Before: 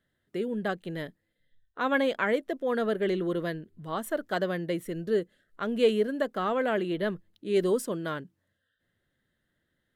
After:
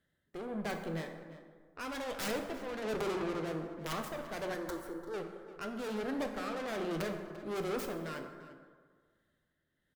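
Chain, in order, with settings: tracing distortion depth 0.21 ms; 2.82–3.93 ten-band EQ 125 Hz -10 dB, 250 Hz +6 dB, 500 Hz +7 dB, 1000 Hz +7 dB; tube stage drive 36 dB, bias 0.75; tremolo 1.3 Hz, depth 46%; wrapped overs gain 33.5 dB; 4.54–5.14 fixed phaser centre 680 Hz, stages 6; outdoor echo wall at 59 m, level -14 dB; plate-style reverb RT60 1.7 s, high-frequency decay 0.45×, DRR 4 dB; gain +2 dB

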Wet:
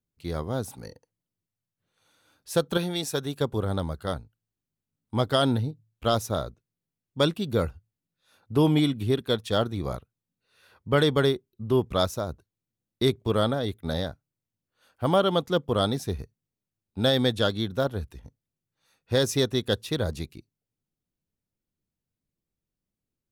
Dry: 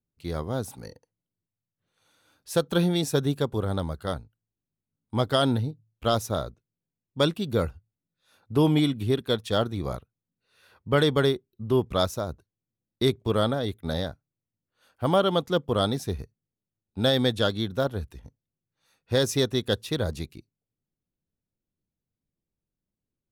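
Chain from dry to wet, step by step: 2.77–3.41 low shelf 440 Hz -9 dB

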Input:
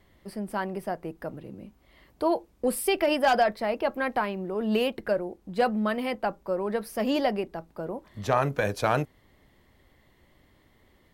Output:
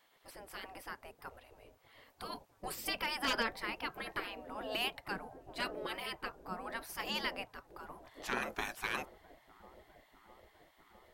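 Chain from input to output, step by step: dark delay 0.654 s, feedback 75%, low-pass 420 Hz, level -15 dB; spectral gate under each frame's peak -15 dB weak; gain -1 dB

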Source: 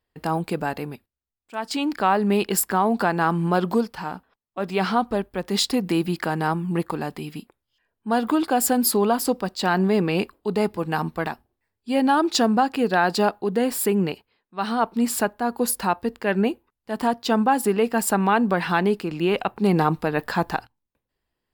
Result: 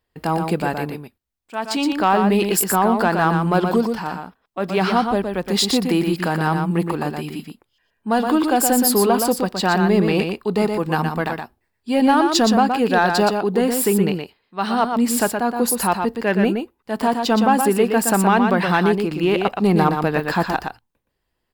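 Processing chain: in parallel at -5 dB: soft clip -17 dBFS, distortion -13 dB; on the sum: echo 0.12 s -5.5 dB

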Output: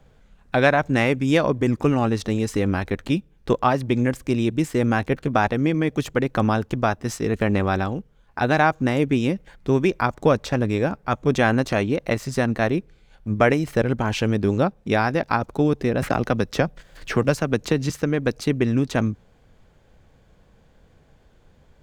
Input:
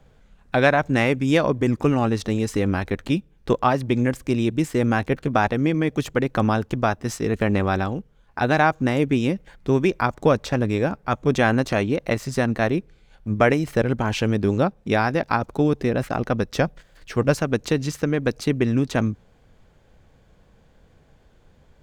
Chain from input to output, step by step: 16.02–17.9 three-band squash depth 70%

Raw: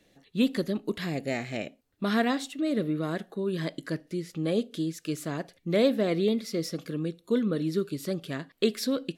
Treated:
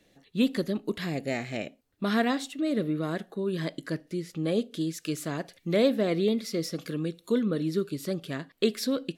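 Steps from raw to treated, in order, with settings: 4.81–7.43 mismatched tape noise reduction encoder only

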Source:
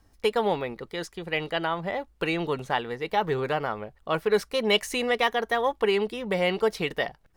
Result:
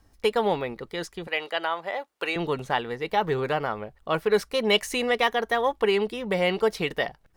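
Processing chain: 1.27–2.36 HPF 500 Hz 12 dB/oct; gain +1 dB

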